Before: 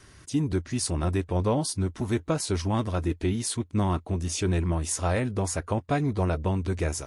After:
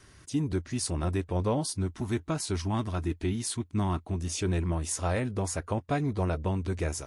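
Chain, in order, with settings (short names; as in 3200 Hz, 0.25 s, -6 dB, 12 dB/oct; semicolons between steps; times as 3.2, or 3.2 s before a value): 1.86–4.2 bell 510 Hz -12.5 dB 0.25 oct; gain -3 dB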